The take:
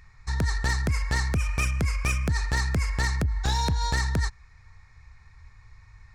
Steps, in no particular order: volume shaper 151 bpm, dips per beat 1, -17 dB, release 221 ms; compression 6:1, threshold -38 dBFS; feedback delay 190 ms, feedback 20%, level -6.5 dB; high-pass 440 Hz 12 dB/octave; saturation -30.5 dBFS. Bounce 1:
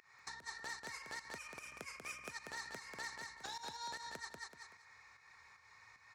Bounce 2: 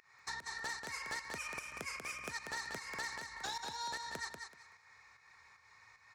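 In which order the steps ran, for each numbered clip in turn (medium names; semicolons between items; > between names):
volume shaper > feedback delay > compression > high-pass > saturation; high-pass > compression > volume shaper > feedback delay > saturation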